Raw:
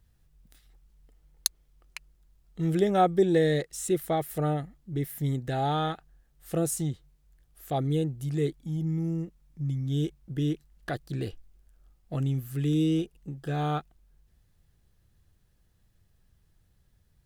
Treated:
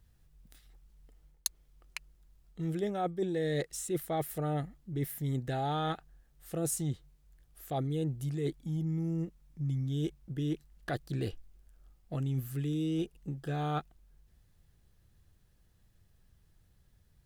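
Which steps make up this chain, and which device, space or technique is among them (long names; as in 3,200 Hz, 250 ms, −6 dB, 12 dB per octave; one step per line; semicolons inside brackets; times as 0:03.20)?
compression on the reversed sound (reversed playback; downward compressor 12 to 1, threshold −29 dBFS, peak gain reduction 13 dB; reversed playback)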